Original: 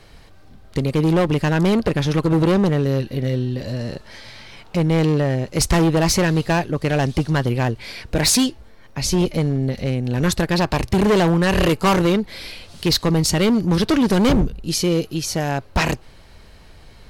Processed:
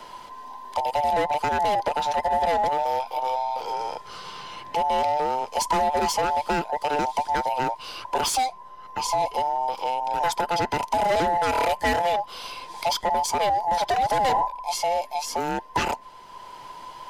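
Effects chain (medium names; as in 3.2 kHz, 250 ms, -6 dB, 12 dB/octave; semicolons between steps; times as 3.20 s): every band turned upside down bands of 1 kHz; three bands compressed up and down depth 40%; trim -6 dB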